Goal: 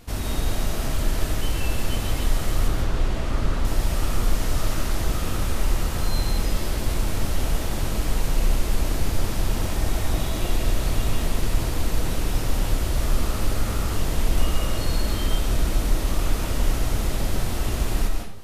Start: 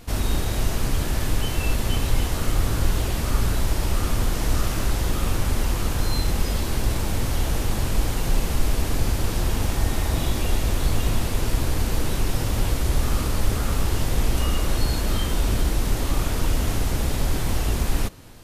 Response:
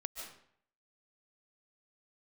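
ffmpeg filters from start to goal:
-filter_complex "[0:a]asettb=1/sr,asplit=3[a][b][c];[a]atrim=end=2.684[d];[b]atrim=start=2.68:end=3.65,asetpts=PTS-STARTPTS,afade=t=in:d=0.004:c=qsin,afade=t=out:st=0.966:d=0.004:c=qsin,aemphasis=mode=reproduction:type=50fm[e];[c]atrim=start=3.646[f];[d][e]acrossfade=d=0.004:c1=hsin:c2=qsin[g];[g][f]acrossfade=d=0.004:c1=qsin:c2=hsin[h];[1:a]atrim=start_sample=2205[i];[h][i]afir=irnorm=-1:irlink=0"

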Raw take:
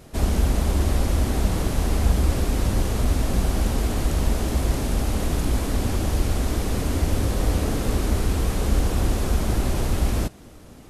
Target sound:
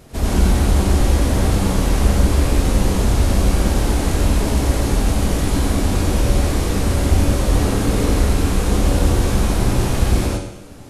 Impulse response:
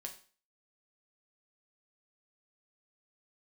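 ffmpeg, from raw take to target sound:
-filter_complex "[0:a]asplit=2[a][b];[1:a]atrim=start_sample=2205,asetrate=22491,aresample=44100,adelay=92[c];[b][c]afir=irnorm=-1:irlink=0,volume=2dB[d];[a][d]amix=inputs=2:normalize=0,volume=1.5dB"

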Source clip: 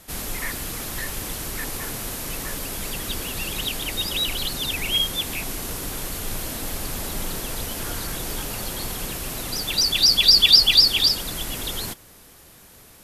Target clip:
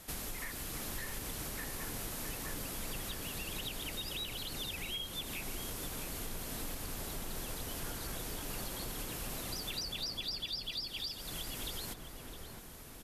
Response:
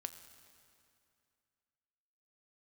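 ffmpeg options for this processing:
-filter_complex "[0:a]acompressor=threshold=-33dB:ratio=12,asplit=2[a][b];[b]adelay=661,lowpass=f=1.5k:p=1,volume=-4.5dB,asplit=2[c][d];[d]adelay=661,lowpass=f=1.5k:p=1,volume=0.54,asplit=2[e][f];[f]adelay=661,lowpass=f=1.5k:p=1,volume=0.54,asplit=2[g][h];[h]adelay=661,lowpass=f=1.5k:p=1,volume=0.54,asplit=2[i][j];[j]adelay=661,lowpass=f=1.5k:p=1,volume=0.54,asplit=2[k][l];[l]adelay=661,lowpass=f=1.5k:p=1,volume=0.54,asplit=2[m][n];[n]adelay=661,lowpass=f=1.5k:p=1,volume=0.54[o];[c][e][g][i][k][m][o]amix=inputs=7:normalize=0[p];[a][p]amix=inputs=2:normalize=0,volume=-4.5dB"

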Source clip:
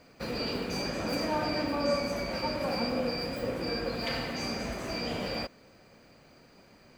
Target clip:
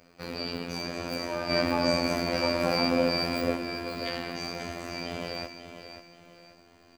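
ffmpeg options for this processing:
-filter_complex "[0:a]asplit=3[a][b][c];[a]afade=t=out:st=1.49:d=0.02[d];[b]acontrast=85,afade=t=in:st=1.49:d=0.02,afade=t=out:st=3.55:d=0.02[e];[c]afade=t=in:st=3.55:d=0.02[f];[d][e][f]amix=inputs=3:normalize=0,afftfilt=real='hypot(re,im)*cos(PI*b)':imag='0':win_size=2048:overlap=0.75,aecho=1:1:537|1074|1611|2148:0.335|0.121|0.0434|0.0156,volume=1.5dB"

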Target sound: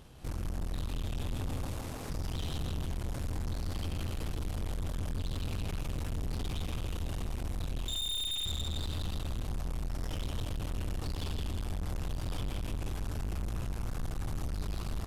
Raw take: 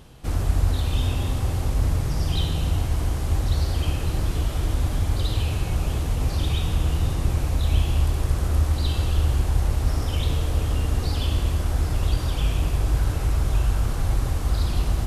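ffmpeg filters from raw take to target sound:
-filter_complex "[0:a]acompressor=threshold=-21dB:ratio=6,asettb=1/sr,asplit=3[a][b][c];[a]atrim=end=1.584[d];[b]atrim=start=1.58:end=2.1,asetpts=PTS-STARTPTS,afade=t=in:d=0.004:c=qsin,afade=t=out:st=0.516:d=0.004:c=qsin,highpass=f=210:w=0.5412,highpass=f=210:w=1.3066[e];[c]atrim=start=2.096[f];[d][e]acrossfade=d=0.004:c1=hsin:c2=qsin[g];[g][f]acrossfade=d=0.004:c1=qsin:c2=hsin,asettb=1/sr,asplit=3[h][i][j];[h]atrim=end=7.874[k];[i]atrim=start=7.87:end=8.46,asetpts=PTS-STARTPTS,afade=t=in:d=0.004:c=qsin,afade=t=out:st=0.586:d=0.004:c=qsin,lowpass=f=3.1k:t=q:w=0.5098,lowpass=f=3.1k:t=q:w=0.6013,lowpass=f=3.1k:t=q:w=0.9,lowpass=f=3.1k:t=q:w=2.563,afreqshift=-3700[l];[j]atrim=start=8.456[m];[k][l]acrossfade=d=0.004:c1=hsin:c2=qsin[n];[n][m]acrossfade=d=0.004:c1=qsin:c2=hsin,asplit=2[o][p];[p]aecho=0:1:163|326|489|652|815|978|1141:0.631|0.341|0.184|0.0994|0.0537|0.029|0.0156[q];[o][q]amix=inputs=2:normalize=0,aeval=exprs='(tanh(31.6*val(0)+0.65)-tanh(0.65))/31.6':c=same,volume=-3dB"

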